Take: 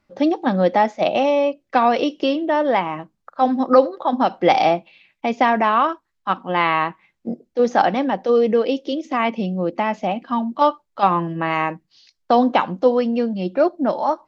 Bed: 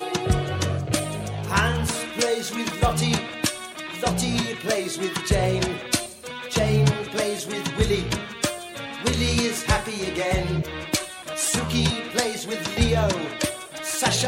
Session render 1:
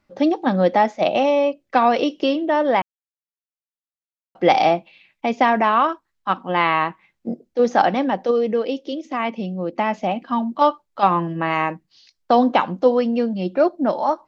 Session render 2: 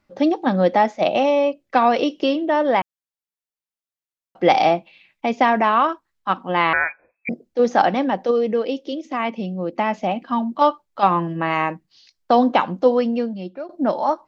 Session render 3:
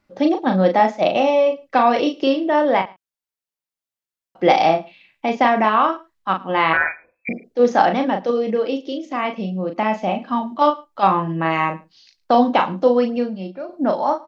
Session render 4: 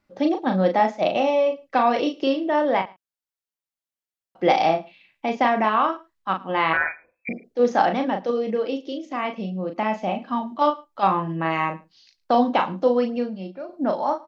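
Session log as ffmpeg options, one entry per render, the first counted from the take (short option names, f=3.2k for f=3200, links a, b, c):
-filter_complex "[0:a]asplit=5[a][b][c][d][e];[a]atrim=end=2.82,asetpts=PTS-STARTPTS,afade=t=out:st=2.816:d=0.004:c=hsin[f];[b]atrim=start=2.82:end=4.35,asetpts=PTS-STARTPTS,volume=0[g];[c]atrim=start=4.35:end=8.312,asetpts=PTS-STARTPTS,afade=t=in:d=0.004:c=hsin[h];[d]atrim=start=8.308:end=9.782,asetpts=PTS-STARTPTS,volume=-3.5dB[i];[e]atrim=start=9.778[j];[f][g][h]concat=n=3:v=0:a=1[k];[k][i]acrossfade=d=0.004:c1=hsin:c2=hsin[l];[l][j]acrossfade=d=0.004:c1=hsin:c2=hsin"
-filter_complex "[0:a]asettb=1/sr,asplit=3[a][b][c];[a]atrim=end=6.734[d];[b]atrim=start=6.73:end=7.29,asetpts=PTS-STARTPTS,afade=t=in:d=0.004:c=qsin,afade=t=out:st=0.556:d=0.004:c=qsin,lowpass=f=2.2k:t=q:w=0.5098,lowpass=f=2.2k:t=q:w=0.6013,lowpass=f=2.2k:t=q:w=0.9,lowpass=f=2.2k:t=q:w=2.563,afreqshift=-2600[e];[c]atrim=start=7.286[f];[d][e]acrossfade=d=0.004:c1=hsin:c2=qsin[g];[g][f]acrossfade=d=0.004:c1=qsin:c2=hsin,asplit=2[h][i];[h]atrim=end=13.69,asetpts=PTS-STARTPTS,afade=t=out:st=13.06:d=0.63:silence=0.0707946[j];[i]atrim=start=13.69,asetpts=PTS-STARTPTS,afade=t=in:d=0.004:c=hsin:silence=0.0707946[k];[j][k]concat=n=2:v=0:a=1"
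-filter_complex "[0:a]asplit=2[a][b];[b]adelay=37,volume=-6dB[c];[a][c]amix=inputs=2:normalize=0,aecho=1:1:108:0.0668"
-af "volume=-4dB"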